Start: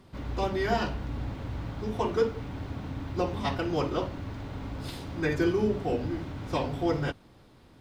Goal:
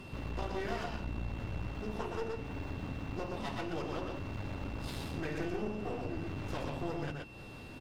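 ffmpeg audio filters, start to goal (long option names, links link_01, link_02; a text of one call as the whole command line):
ffmpeg -i in.wav -af "acompressor=threshold=-45dB:ratio=3,aecho=1:1:122:0.668,aeval=exprs='clip(val(0),-1,0.00335)':channel_layout=same,aeval=exprs='val(0)+0.001*sin(2*PI*2700*n/s)':channel_layout=same,volume=6.5dB" -ar 44100 -c:a libvorbis -b:a 96k out.ogg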